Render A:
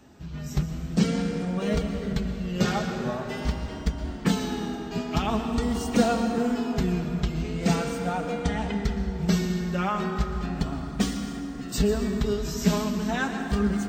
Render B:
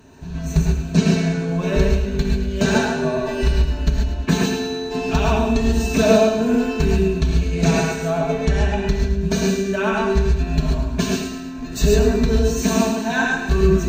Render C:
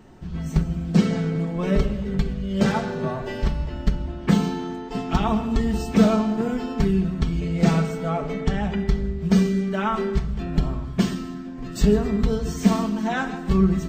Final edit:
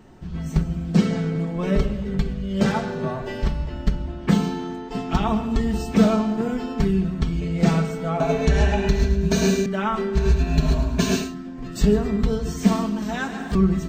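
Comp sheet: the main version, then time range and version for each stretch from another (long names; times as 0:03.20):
C
0:08.20–0:09.66: punch in from B
0:10.19–0:11.27: punch in from B, crossfade 0.16 s
0:13.02–0:13.55: punch in from A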